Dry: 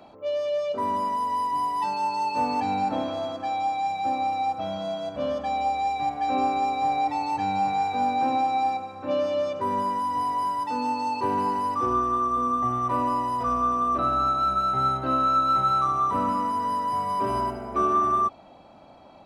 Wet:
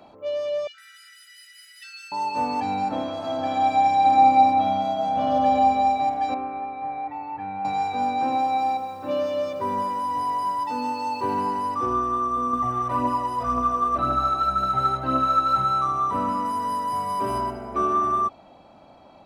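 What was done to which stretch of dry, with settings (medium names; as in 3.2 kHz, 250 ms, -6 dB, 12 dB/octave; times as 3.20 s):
0.67–2.12 s: brick-wall FIR high-pass 1.3 kHz
3.14–4.40 s: reverb throw, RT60 2.9 s, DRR -4.5 dB
4.92–5.57 s: reverb throw, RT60 3 s, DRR -1.5 dB
6.34–7.65 s: four-pole ladder low-pass 2.5 kHz, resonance 30%
8.15–11.40 s: bit-crushed delay 172 ms, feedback 55%, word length 8-bit, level -13.5 dB
12.53–15.65 s: phaser 1.9 Hz, delay 2.7 ms, feedback 41%
16.45–17.38 s: treble shelf 7.7 kHz +9 dB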